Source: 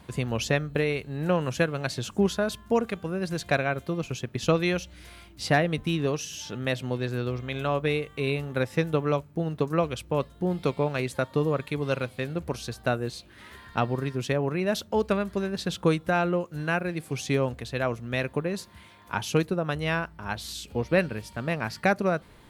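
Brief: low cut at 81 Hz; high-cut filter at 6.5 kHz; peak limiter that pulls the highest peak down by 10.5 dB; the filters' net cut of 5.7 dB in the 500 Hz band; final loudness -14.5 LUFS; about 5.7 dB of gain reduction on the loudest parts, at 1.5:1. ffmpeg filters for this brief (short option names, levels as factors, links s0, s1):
-af "highpass=81,lowpass=6500,equalizer=f=500:t=o:g=-7,acompressor=threshold=0.0158:ratio=1.5,volume=13.3,alimiter=limit=0.794:level=0:latency=1"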